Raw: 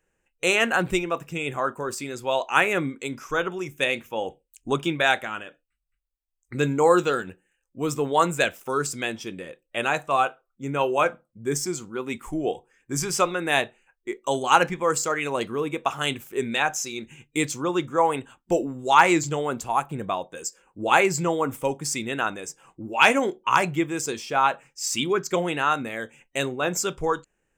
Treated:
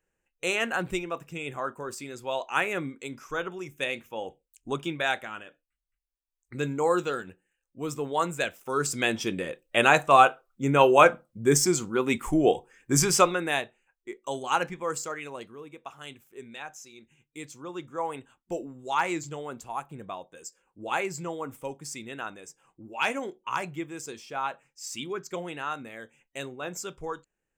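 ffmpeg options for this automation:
-af "volume=11.5dB,afade=t=in:st=8.62:d=0.64:silence=0.266073,afade=t=out:st=12.97:d=0.64:silence=0.223872,afade=t=out:st=14.97:d=0.59:silence=0.354813,afade=t=in:st=17.38:d=0.7:silence=0.473151"

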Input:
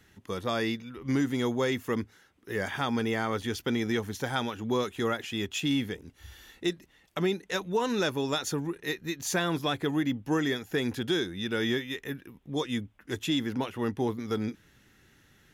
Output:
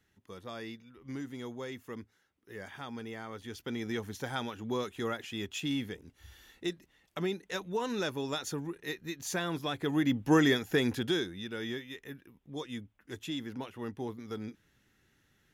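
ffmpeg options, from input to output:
-af "volume=4dB,afade=t=in:st=3.37:d=0.68:silence=0.421697,afade=t=in:st=9.76:d=0.62:silence=0.334965,afade=t=out:st=10.38:d=1.12:silence=0.223872"

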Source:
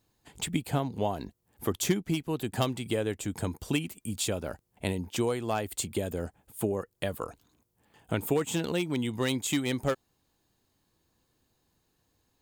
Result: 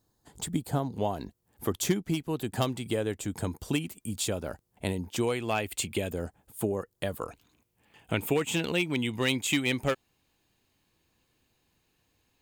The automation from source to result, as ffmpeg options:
-af "asetnsamples=n=441:p=0,asendcmd='0.93 equalizer g -1.5;5.23 equalizer g 9.5;6.1 equalizer g -1.5;7.28 equalizer g 9',equalizer=f=2.5k:t=o:w=0.72:g=-12"

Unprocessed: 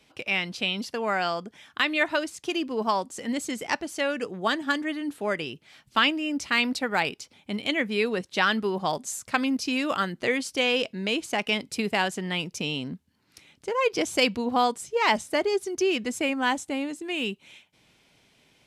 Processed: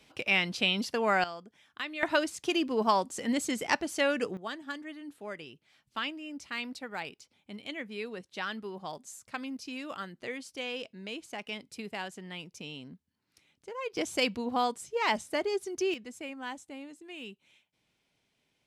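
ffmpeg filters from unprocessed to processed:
-af "asetnsamples=n=441:p=0,asendcmd='1.24 volume volume -12.5dB;2.03 volume volume -0.5dB;4.37 volume volume -13dB;13.97 volume volume -6dB;15.94 volume volume -14.5dB',volume=0dB"

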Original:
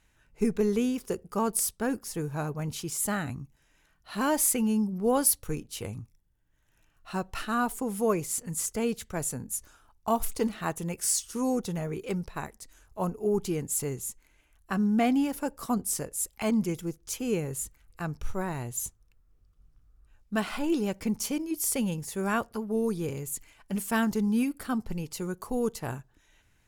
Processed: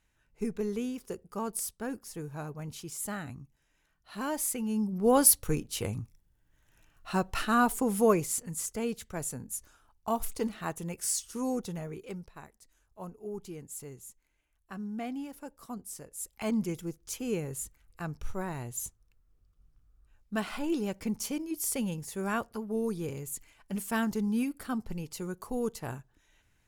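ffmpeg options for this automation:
-af "volume=12dB,afade=t=in:st=4.65:d=0.58:silence=0.316228,afade=t=out:st=8.03:d=0.5:silence=0.446684,afade=t=out:st=11.59:d=0.76:silence=0.375837,afade=t=in:st=16.03:d=0.5:silence=0.354813"

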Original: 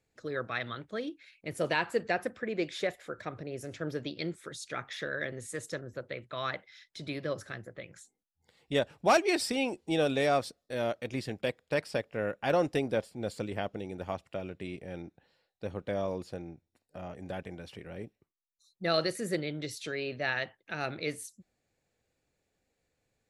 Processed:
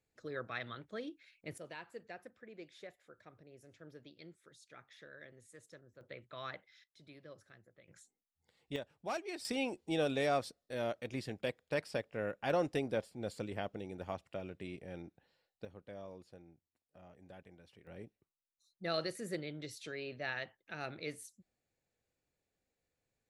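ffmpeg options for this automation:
-af "asetnsamples=n=441:p=0,asendcmd='1.58 volume volume -19dB;6.01 volume volume -10dB;6.84 volume volume -19.5dB;7.88 volume volume -8dB;8.76 volume volume -15.5dB;9.45 volume volume -5.5dB;15.65 volume volume -16dB;17.87 volume volume -8dB',volume=-7dB"

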